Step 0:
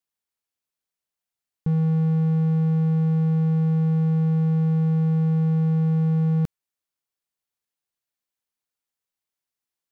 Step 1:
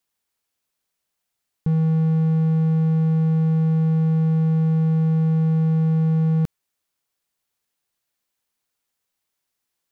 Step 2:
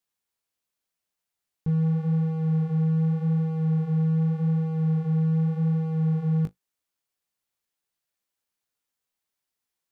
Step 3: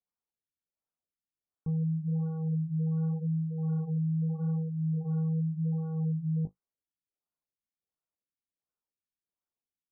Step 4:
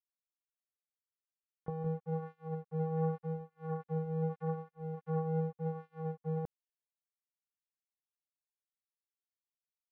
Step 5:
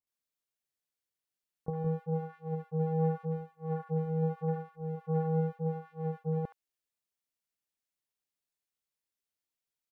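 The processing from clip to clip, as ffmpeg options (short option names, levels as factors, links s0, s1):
-af "alimiter=limit=0.0794:level=0:latency=1,volume=2.66"
-af "flanger=delay=9.9:depth=9.6:regen=-28:speed=0.85:shape=sinusoidal,volume=0.794"
-af "afftfilt=real='re*lt(b*sr/1024,310*pow(1600/310,0.5+0.5*sin(2*PI*1.4*pts/sr)))':imag='im*lt(b*sr/1024,310*pow(1600/310,0.5+0.5*sin(2*PI*1.4*pts/sr)))':win_size=1024:overlap=0.75,volume=0.473"
-filter_complex "[0:a]asplit=2[s0][s1];[s1]adelay=180.8,volume=0.2,highshelf=f=4000:g=-4.07[s2];[s0][s2]amix=inputs=2:normalize=0,acrusher=bits=3:mix=0:aa=0.5"
-filter_complex "[0:a]acrossover=split=1100[s0][s1];[s1]adelay=70[s2];[s0][s2]amix=inputs=2:normalize=0,volume=1.58"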